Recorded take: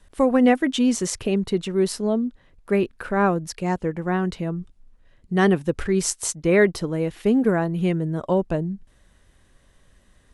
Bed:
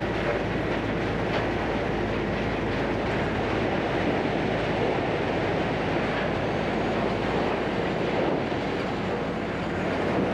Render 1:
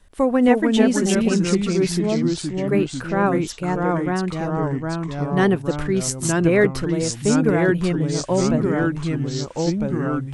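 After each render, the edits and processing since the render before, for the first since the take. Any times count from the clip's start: echoes that change speed 0.26 s, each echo -2 st, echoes 3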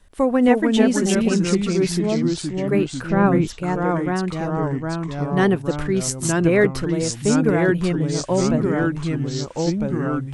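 3.1–3.61 tone controls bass +7 dB, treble -5 dB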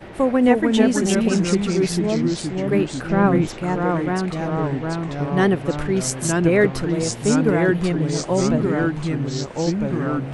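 add bed -11 dB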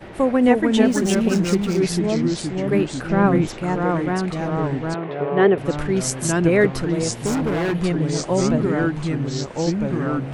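0.85–1.81 backlash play -30.5 dBFS; 4.94–5.58 speaker cabinet 200–3300 Hz, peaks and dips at 260 Hz -9 dB, 420 Hz +9 dB, 620 Hz +4 dB; 7.26–7.74 hard clip -19 dBFS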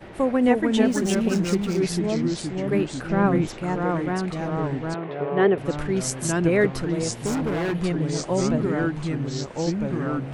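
gain -3.5 dB

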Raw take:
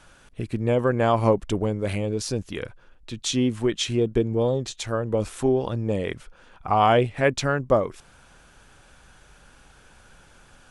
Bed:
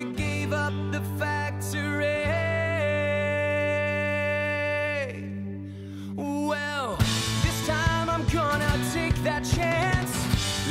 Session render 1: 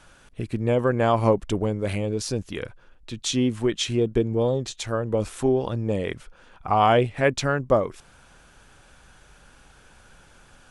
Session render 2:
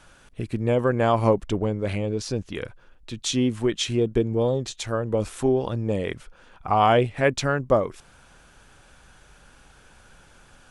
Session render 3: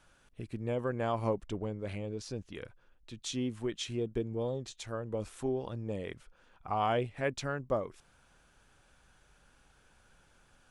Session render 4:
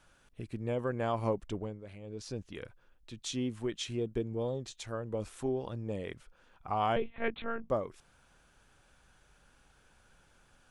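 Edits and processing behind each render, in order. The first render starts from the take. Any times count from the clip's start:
nothing audible
1.47–2.55 air absorption 51 m
gain -12 dB
1.56–2.29 dip -10 dB, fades 0.29 s; 6.96–7.7 monotone LPC vocoder at 8 kHz 230 Hz

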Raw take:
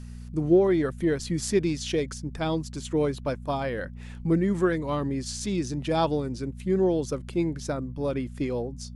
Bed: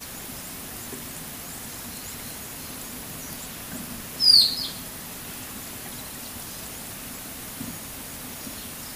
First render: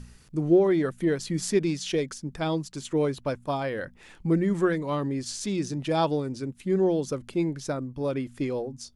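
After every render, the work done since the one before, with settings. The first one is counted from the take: de-hum 60 Hz, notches 4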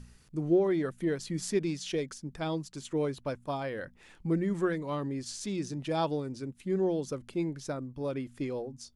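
gain -5.5 dB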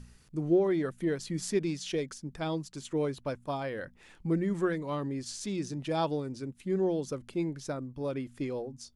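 nothing audible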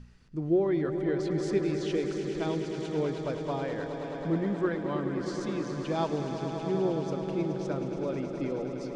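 air absorption 120 m; swelling echo 0.106 s, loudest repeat 5, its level -11 dB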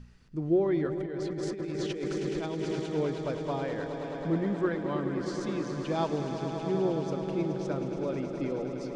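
0.86–2.8 negative-ratio compressor -33 dBFS

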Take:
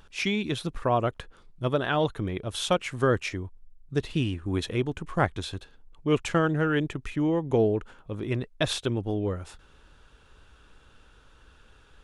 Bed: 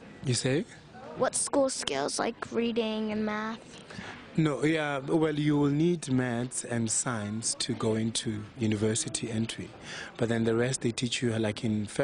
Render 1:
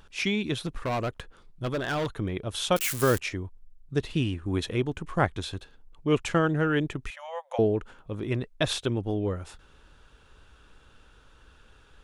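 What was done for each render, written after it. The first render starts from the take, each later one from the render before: 0.66–2.17 hard clip -25 dBFS; 2.76–3.19 switching spikes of -20 dBFS; 7.1–7.59 brick-wall FIR high-pass 510 Hz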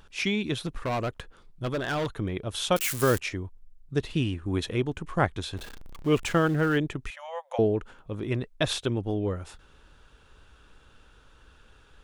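5.57–6.78 zero-crossing step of -38 dBFS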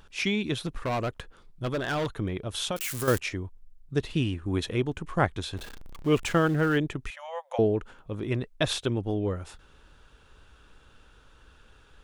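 2.31–3.08 compressor, threshold -26 dBFS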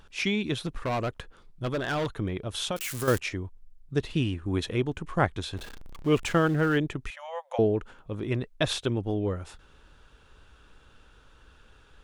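high shelf 10000 Hz -3.5 dB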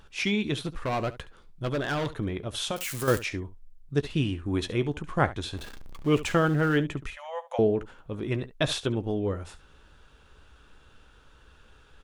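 early reflections 14 ms -12.5 dB, 70 ms -16.5 dB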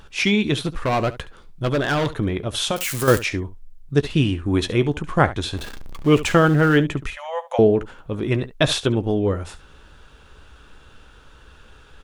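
gain +8 dB; limiter -3 dBFS, peak gain reduction 2 dB

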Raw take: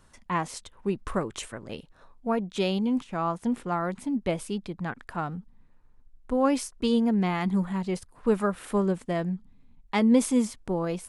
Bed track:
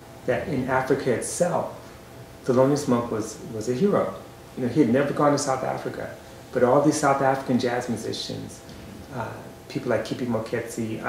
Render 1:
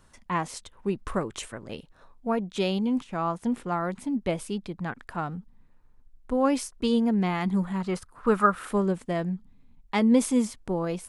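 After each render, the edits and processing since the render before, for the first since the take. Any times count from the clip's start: 7.8–8.69 bell 1300 Hz +12.5 dB 0.65 oct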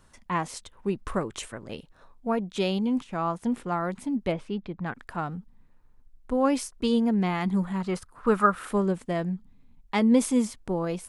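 4.32–4.86 LPF 2900 Hz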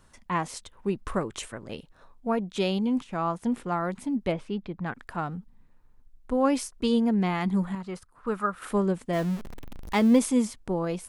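7.75–8.62 gain -7 dB; 9.13–10.19 zero-crossing step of -33 dBFS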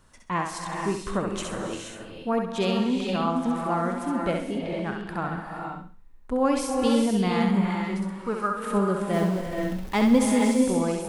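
thinning echo 66 ms, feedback 31%, high-pass 390 Hz, level -4 dB; non-linear reverb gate 0.5 s rising, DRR 2.5 dB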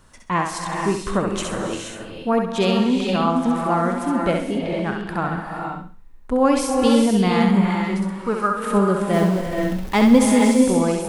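gain +6 dB

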